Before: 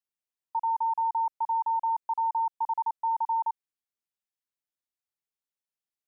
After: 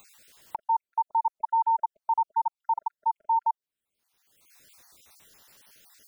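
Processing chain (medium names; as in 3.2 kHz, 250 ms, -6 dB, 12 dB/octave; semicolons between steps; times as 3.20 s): random holes in the spectrogram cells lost 45%; dynamic bell 790 Hz, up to +5 dB, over -42 dBFS, Q 1.3; upward compressor, threshold -27 dBFS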